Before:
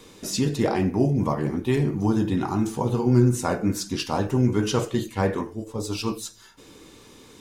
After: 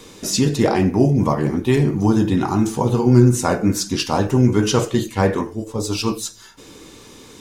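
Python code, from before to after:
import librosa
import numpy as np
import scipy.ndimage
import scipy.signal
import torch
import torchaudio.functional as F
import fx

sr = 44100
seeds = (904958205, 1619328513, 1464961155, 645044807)

y = fx.peak_eq(x, sr, hz=6200.0, db=2.5, octaves=0.77)
y = y * librosa.db_to_amplitude(6.0)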